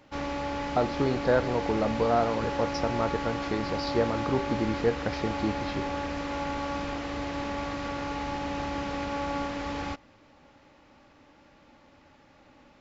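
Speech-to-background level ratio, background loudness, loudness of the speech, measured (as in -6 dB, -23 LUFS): 3.5 dB, -33.0 LUFS, -29.5 LUFS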